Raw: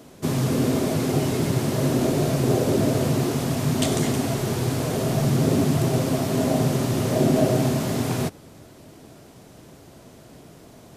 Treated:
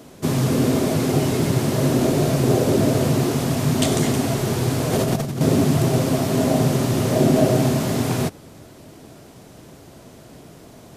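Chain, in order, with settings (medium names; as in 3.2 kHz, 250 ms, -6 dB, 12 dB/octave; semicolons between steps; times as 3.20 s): 4.92–5.41 s: compressor with a negative ratio -24 dBFS, ratio -0.5; trim +3 dB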